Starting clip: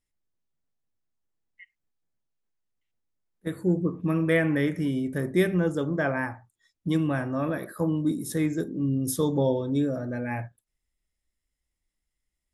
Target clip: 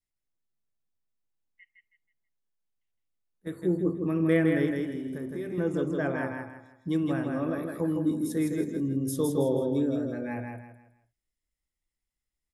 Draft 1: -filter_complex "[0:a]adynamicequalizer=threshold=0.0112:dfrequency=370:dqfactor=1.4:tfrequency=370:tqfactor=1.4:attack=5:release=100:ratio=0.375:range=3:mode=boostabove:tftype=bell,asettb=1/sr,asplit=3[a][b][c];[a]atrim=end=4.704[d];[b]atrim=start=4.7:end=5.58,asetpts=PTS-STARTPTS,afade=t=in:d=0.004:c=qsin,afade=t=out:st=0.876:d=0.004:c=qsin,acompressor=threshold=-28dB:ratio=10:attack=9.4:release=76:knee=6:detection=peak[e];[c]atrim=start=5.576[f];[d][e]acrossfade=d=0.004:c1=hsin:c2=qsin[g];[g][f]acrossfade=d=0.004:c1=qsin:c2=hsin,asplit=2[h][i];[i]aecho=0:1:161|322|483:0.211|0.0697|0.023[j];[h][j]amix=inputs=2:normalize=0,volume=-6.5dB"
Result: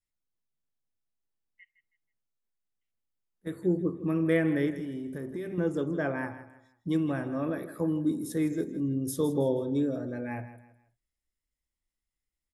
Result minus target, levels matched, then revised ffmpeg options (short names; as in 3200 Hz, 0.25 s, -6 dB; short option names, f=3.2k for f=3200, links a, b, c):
echo-to-direct -9.5 dB
-filter_complex "[0:a]adynamicequalizer=threshold=0.0112:dfrequency=370:dqfactor=1.4:tfrequency=370:tqfactor=1.4:attack=5:release=100:ratio=0.375:range=3:mode=boostabove:tftype=bell,asettb=1/sr,asplit=3[a][b][c];[a]atrim=end=4.704[d];[b]atrim=start=4.7:end=5.58,asetpts=PTS-STARTPTS,afade=t=in:d=0.004:c=qsin,afade=t=out:st=0.876:d=0.004:c=qsin,acompressor=threshold=-28dB:ratio=10:attack=9.4:release=76:knee=6:detection=peak[e];[c]atrim=start=5.576[f];[d][e]acrossfade=d=0.004:c1=hsin:c2=qsin[g];[g][f]acrossfade=d=0.004:c1=qsin:c2=hsin,asplit=2[h][i];[i]aecho=0:1:161|322|483|644:0.631|0.208|0.0687|0.0227[j];[h][j]amix=inputs=2:normalize=0,volume=-6.5dB"